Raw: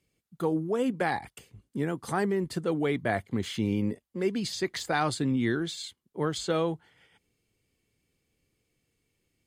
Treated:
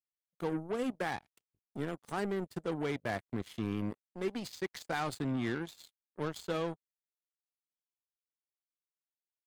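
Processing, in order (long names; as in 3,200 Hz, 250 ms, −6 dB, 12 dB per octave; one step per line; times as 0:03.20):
soft clipping −25.5 dBFS, distortion −12 dB
power curve on the samples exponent 3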